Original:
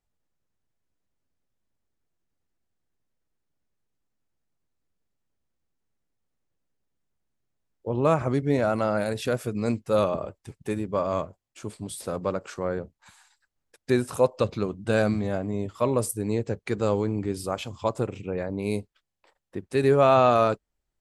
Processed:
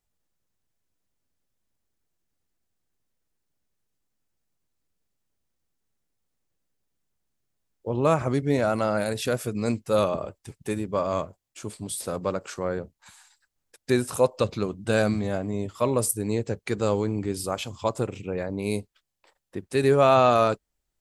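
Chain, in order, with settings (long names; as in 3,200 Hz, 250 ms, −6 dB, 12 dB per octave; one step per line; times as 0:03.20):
high-shelf EQ 3,700 Hz +6.5 dB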